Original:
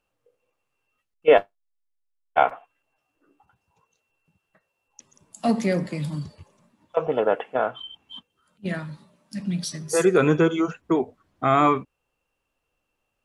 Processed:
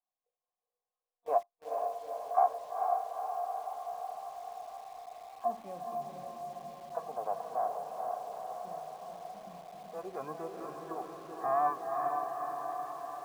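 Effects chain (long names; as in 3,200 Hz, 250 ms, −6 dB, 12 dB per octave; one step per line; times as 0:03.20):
formant resonators in series a
notch filter 940 Hz, Q 16
pitch-shifted copies added +7 semitones −15 dB
feedback delay with all-pass diffusion 457 ms, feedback 69%, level −3 dB
in parallel at −3.5 dB: bit reduction 8 bits
on the sum: level −6.5 dB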